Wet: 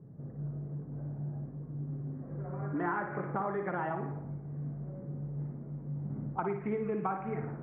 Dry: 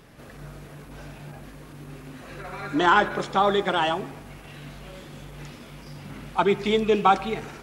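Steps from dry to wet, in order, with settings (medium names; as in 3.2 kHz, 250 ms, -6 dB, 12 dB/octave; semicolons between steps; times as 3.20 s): high-pass 80 Hz 12 dB/octave; level-controlled noise filter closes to 370 Hz, open at -16.5 dBFS; steep low-pass 2.1 kHz 48 dB/octave; peaking EQ 140 Hz +12 dB 0.61 oct; compression 6:1, threshold -28 dBFS, peak gain reduction 14.5 dB; on a send: flutter echo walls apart 9.8 m, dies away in 0.5 s; on the sum: trim -3.5 dB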